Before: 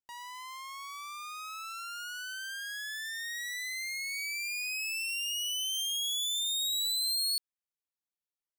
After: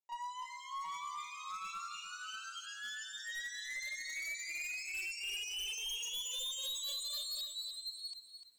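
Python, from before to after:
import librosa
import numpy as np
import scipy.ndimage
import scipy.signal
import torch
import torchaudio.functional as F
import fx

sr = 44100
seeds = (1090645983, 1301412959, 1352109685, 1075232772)

p1 = fx.cabinet(x, sr, low_hz=350.0, low_slope=12, high_hz=7500.0, hz=(720.0, 1000.0, 1600.0, 4900.0, 7000.0), db=(7, 7, -10, -6, 9))
p2 = fx.chorus_voices(p1, sr, voices=2, hz=0.27, base_ms=27, depth_ms=2.4, mix_pct=70)
p3 = fx.high_shelf(p2, sr, hz=5500.0, db=-9.0)
p4 = p3 + 0.99 * np.pad(p3, (int(5.3 * sr / 1000.0), 0))[:len(p3)]
p5 = p4 + fx.echo_single(p4, sr, ms=725, db=-6.5, dry=0)
p6 = np.clip(p5, -10.0 ** (-36.0 / 20.0), 10.0 ** (-36.0 / 20.0))
p7 = fx.echo_crushed(p6, sr, ms=298, feedback_pct=35, bits=11, wet_db=-8.5)
y = p7 * librosa.db_to_amplitude(-2.5)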